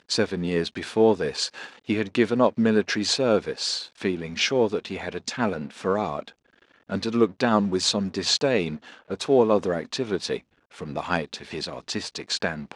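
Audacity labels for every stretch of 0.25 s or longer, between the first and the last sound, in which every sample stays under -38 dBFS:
6.300000	6.900000	silence
10.390000	10.740000	silence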